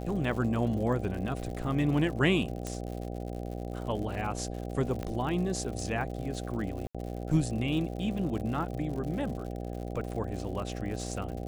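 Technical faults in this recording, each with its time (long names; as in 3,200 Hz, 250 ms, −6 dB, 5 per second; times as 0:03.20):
mains buzz 60 Hz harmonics 13 −37 dBFS
surface crackle 110 per second −38 dBFS
0:02.67: click −21 dBFS
0:05.03: click −22 dBFS
0:06.87–0:06.95: drop-out 76 ms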